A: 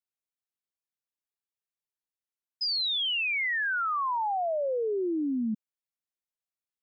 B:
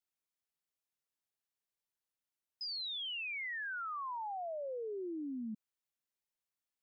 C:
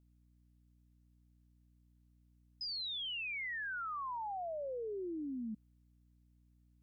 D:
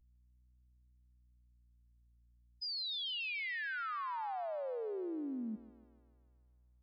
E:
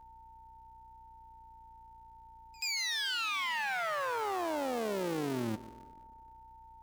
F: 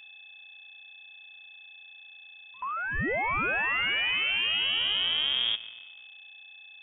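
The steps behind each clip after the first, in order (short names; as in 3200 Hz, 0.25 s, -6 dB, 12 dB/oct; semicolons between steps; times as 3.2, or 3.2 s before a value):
limiter -37.5 dBFS, peak gain reduction 12 dB
hum 60 Hz, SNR 24 dB
spectral contrast raised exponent 2.3; thinning echo 0.147 s, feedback 72%, high-pass 260 Hz, level -14 dB; vibrato 0.36 Hz 39 cents; gain +1 dB
cycle switcher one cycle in 2, muted; whine 900 Hz -61 dBFS; reverse echo 82 ms -24 dB; gain +8.5 dB
in parallel at -3 dB: crossover distortion -58.5 dBFS; on the sum: inverted band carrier 3500 Hz; gain +2 dB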